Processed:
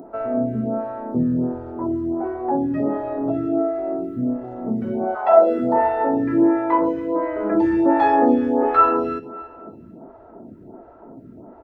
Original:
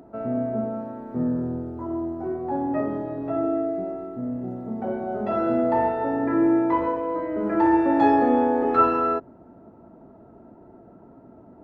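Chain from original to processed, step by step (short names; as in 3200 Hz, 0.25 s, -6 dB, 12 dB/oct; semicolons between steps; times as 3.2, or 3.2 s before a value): in parallel at +1 dB: compressor, threshold -28 dBFS, peak gain reduction 14 dB; 5.14–5.58 on the sum: resonant high-pass 1100 Hz -> 430 Hz, resonance Q 3.8; feedback echo 0.283 s, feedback 39%, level -17.5 dB; photocell phaser 1.4 Hz; gain +2.5 dB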